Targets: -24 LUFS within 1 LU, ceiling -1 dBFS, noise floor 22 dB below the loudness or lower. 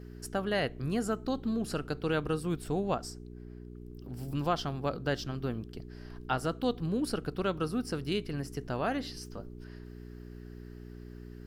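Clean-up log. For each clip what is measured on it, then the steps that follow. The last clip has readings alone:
hum 60 Hz; harmonics up to 420 Hz; hum level -44 dBFS; loudness -33.5 LUFS; peak -16.0 dBFS; loudness target -24.0 LUFS
-> de-hum 60 Hz, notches 7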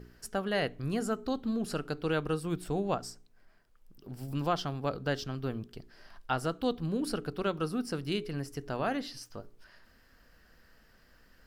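hum none; loudness -34.0 LUFS; peak -16.5 dBFS; loudness target -24.0 LUFS
-> gain +10 dB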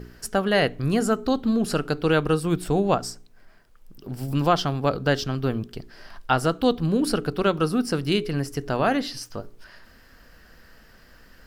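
loudness -24.0 LUFS; peak -6.5 dBFS; noise floor -53 dBFS

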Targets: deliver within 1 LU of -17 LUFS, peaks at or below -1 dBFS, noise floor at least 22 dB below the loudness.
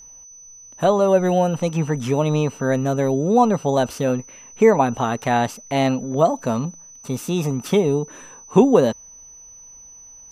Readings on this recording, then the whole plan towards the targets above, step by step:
steady tone 6000 Hz; tone level -41 dBFS; loudness -19.5 LUFS; peak -2.5 dBFS; loudness target -17.0 LUFS
-> notch 6000 Hz, Q 30; gain +2.5 dB; limiter -1 dBFS

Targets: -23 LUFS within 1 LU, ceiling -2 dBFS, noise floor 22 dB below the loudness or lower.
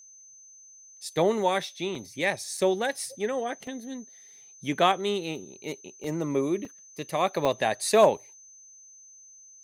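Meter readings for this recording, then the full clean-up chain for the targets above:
dropouts 6; longest dropout 3.1 ms; steady tone 6200 Hz; tone level -49 dBFS; loudness -27.5 LUFS; peak -7.5 dBFS; loudness target -23.0 LUFS
-> interpolate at 1.95/2.57/3.67/6.04/6.65/7.45, 3.1 ms; notch 6200 Hz, Q 30; gain +4.5 dB

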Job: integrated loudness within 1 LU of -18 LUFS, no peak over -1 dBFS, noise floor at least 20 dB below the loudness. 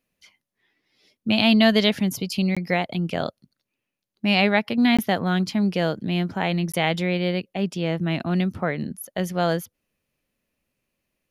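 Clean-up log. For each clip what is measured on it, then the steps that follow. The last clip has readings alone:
dropouts 3; longest dropout 16 ms; loudness -23.0 LUFS; peak -4.0 dBFS; loudness target -18.0 LUFS
-> interpolate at 2.55/4.97/6.72, 16 ms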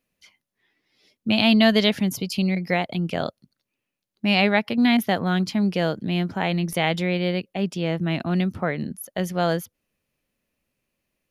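dropouts 0; loudness -22.5 LUFS; peak -4.0 dBFS; loudness target -18.0 LUFS
-> gain +4.5 dB; limiter -1 dBFS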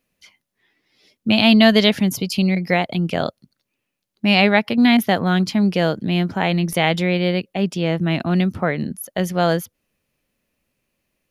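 loudness -18.5 LUFS; peak -1.0 dBFS; noise floor -79 dBFS

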